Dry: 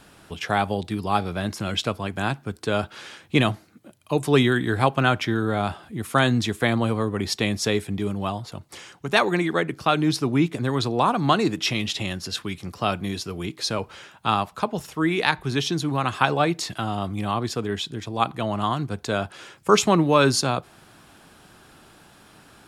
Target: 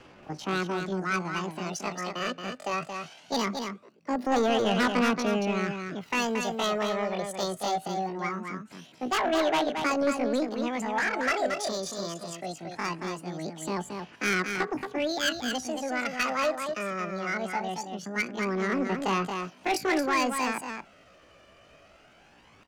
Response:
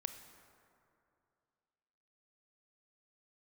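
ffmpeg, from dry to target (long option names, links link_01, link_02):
-filter_complex "[0:a]acrossover=split=140|830[link_01][link_02][link_03];[link_03]adynamicsmooth=sensitivity=0.5:basefreq=2400[link_04];[link_01][link_02][link_04]amix=inputs=3:normalize=0,highshelf=frequency=5000:gain=10,aphaser=in_gain=1:out_gain=1:delay=3.1:decay=0.53:speed=0.21:type=sinusoidal,aemphasis=mode=reproduction:type=cd,asetrate=80880,aresample=44100,atempo=0.545254,asoftclip=type=tanh:threshold=-15dB,aecho=1:1:226:0.501,volume=-5.5dB"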